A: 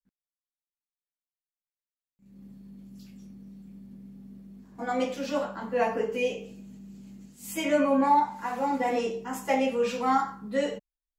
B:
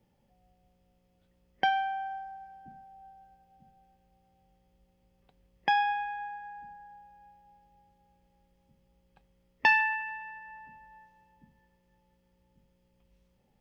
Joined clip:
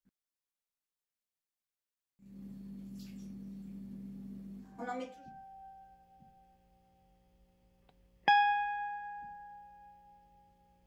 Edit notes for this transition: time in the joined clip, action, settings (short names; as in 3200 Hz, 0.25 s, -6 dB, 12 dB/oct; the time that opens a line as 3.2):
A
4.97 switch to B from 2.37 s, crossfade 0.82 s quadratic